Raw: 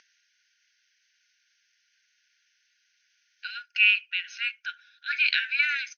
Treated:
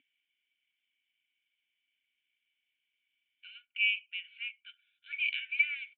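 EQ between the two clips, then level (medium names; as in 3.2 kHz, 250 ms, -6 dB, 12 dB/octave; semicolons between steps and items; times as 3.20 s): cascade formant filter i; +6.0 dB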